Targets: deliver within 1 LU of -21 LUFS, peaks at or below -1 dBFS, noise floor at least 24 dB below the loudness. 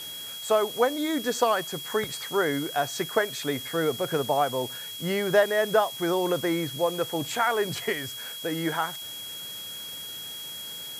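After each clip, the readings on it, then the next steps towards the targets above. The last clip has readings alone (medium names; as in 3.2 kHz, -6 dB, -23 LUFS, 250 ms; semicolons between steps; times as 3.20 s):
steady tone 3.3 kHz; tone level -37 dBFS; noise floor -38 dBFS; noise floor target -52 dBFS; loudness -27.5 LUFS; peak level -9.0 dBFS; loudness target -21.0 LUFS
-> band-stop 3.3 kHz, Q 30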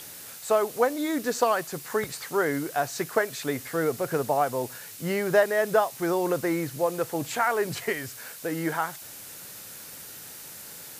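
steady tone not found; noise floor -43 dBFS; noise floor target -51 dBFS
-> noise reduction 8 dB, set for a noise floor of -43 dBFS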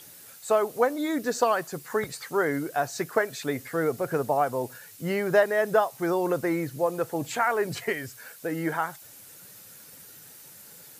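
noise floor -49 dBFS; noise floor target -51 dBFS
-> noise reduction 6 dB, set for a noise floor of -49 dBFS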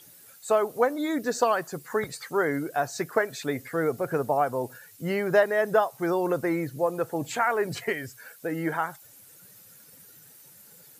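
noise floor -52 dBFS; loudness -27.5 LUFS; peak level -9.0 dBFS; loudness target -21.0 LUFS
-> trim +6.5 dB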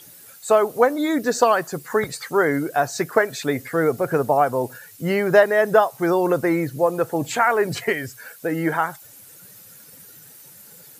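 loudness -21.0 LUFS; peak level -2.5 dBFS; noise floor -46 dBFS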